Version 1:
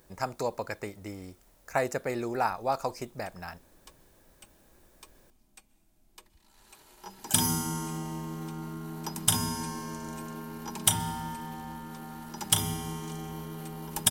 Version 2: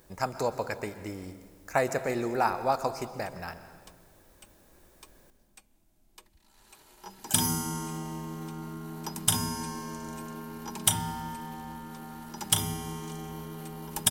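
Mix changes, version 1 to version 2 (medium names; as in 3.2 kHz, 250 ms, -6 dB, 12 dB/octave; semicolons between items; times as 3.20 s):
speech: send on; background: send -7.5 dB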